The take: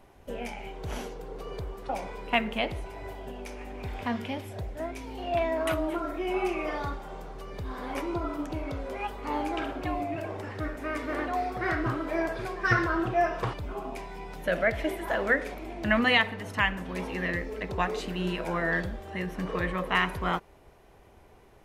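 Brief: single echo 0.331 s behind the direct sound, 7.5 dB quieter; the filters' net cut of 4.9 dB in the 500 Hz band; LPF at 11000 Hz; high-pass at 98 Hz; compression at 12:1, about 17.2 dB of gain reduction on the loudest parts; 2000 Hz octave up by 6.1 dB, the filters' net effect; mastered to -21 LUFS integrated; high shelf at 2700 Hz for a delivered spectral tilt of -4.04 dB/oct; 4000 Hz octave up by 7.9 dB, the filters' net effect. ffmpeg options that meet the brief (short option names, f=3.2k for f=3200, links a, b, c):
-af "highpass=98,lowpass=11k,equalizer=f=500:t=o:g=-8,equalizer=f=2k:t=o:g=5,highshelf=f=2.7k:g=3.5,equalizer=f=4k:t=o:g=6.5,acompressor=threshold=-30dB:ratio=12,aecho=1:1:331:0.422,volume=14dB"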